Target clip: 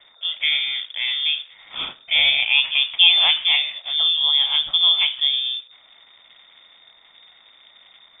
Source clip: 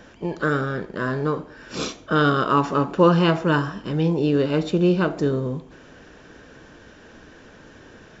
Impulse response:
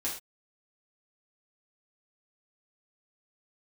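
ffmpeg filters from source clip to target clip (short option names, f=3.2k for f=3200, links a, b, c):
-filter_complex "[0:a]acrossover=split=200|2100[a][b][c];[b]aeval=exprs='sgn(val(0))*max(abs(val(0))-0.00501,0)':c=same[d];[a][d][c]amix=inputs=3:normalize=0,lowpass=f=3.1k:t=q:w=0.5098,lowpass=f=3.1k:t=q:w=0.6013,lowpass=f=3.1k:t=q:w=0.9,lowpass=f=3.1k:t=q:w=2.563,afreqshift=-3700,volume=1.5dB"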